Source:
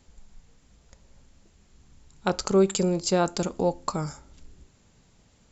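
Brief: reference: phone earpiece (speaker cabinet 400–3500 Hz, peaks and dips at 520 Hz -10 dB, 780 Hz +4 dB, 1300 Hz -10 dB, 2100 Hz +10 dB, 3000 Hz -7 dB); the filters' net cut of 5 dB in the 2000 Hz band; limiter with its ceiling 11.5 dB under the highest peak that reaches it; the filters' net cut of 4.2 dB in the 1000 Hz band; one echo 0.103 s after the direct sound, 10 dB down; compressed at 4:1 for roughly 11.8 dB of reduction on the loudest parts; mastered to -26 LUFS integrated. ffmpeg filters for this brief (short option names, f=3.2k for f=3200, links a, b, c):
-af "equalizer=f=1k:t=o:g=-4.5,equalizer=f=2k:t=o:g=-5,acompressor=threshold=-30dB:ratio=4,alimiter=level_in=3.5dB:limit=-24dB:level=0:latency=1,volume=-3.5dB,highpass=400,equalizer=f=520:t=q:w=4:g=-10,equalizer=f=780:t=q:w=4:g=4,equalizer=f=1.3k:t=q:w=4:g=-10,equalizer=f=2.1k:t=q:w=4:g=10,equalizer=f=3k:t=q:w=4:g=-7,lowpass=f=3.5k:w=0.5412,lowpass=f=3.5k:w=1.3066,aecho=1:1:103:0.316,volume=19.5dB"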